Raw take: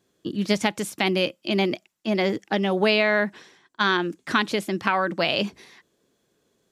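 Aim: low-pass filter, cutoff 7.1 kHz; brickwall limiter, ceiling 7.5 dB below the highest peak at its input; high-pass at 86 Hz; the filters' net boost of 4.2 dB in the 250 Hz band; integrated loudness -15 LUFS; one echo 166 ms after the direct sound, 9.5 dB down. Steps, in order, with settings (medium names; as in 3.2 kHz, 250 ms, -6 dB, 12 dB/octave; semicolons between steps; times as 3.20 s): high-pass 86 Hz; low-pass 7.1 kHz; peaking EQ 250 Hz +6 dB; peak limiter -11 dBFS; delay 166 ms -9.5 dB; trim +8 dB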